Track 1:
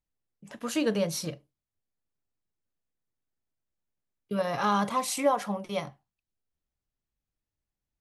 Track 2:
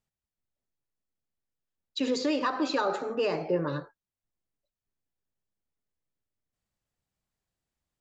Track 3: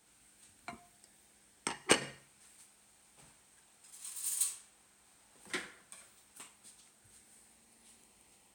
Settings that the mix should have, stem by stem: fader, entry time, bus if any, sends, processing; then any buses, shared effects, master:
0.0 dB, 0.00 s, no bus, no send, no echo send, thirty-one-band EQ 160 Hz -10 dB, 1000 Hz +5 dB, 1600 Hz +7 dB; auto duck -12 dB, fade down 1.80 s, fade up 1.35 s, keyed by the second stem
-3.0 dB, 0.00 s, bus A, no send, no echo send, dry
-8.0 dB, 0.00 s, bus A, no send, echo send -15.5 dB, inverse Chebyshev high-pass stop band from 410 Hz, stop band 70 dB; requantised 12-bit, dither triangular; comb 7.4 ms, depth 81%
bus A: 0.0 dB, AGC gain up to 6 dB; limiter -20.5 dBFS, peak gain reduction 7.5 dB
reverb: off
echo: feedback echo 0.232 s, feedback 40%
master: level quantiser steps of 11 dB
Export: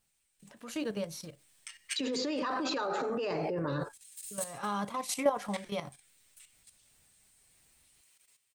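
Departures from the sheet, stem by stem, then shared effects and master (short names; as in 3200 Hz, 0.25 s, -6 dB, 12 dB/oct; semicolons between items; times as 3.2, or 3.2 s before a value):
stem 1: missing thirty-one-band EQ 160 Hz -10 dB, 1000 Hz +5 dB, 1600 Hz +7 dB; stem 2 -3.0 dB -> +9.0 dB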